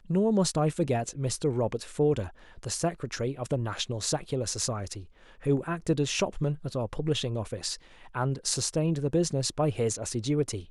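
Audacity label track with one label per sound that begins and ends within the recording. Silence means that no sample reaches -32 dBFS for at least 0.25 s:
2.630000	4.980000	sound
5.460000	7.750000	sound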